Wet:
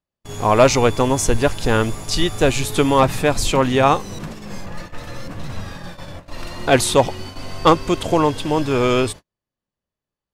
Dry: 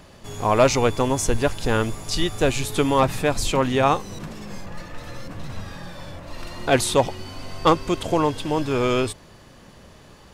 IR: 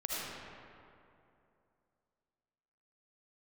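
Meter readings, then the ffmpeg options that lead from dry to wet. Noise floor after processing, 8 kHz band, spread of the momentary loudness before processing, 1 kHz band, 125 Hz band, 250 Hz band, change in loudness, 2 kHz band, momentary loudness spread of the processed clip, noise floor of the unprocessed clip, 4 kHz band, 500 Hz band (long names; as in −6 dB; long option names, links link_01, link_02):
below −85 dBFS, +4.0 dB, 19 LU, +4.0 dB, +4.0 dB, +4.0 dB, +4.0 dB, +4.0 dB, 19 LU, −48 dBFS, +4.0 dB, +4.0 dB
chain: -af "agate=range=-45dB:threshold=-35dB:ratio=16:detection=peak,volume=4dB"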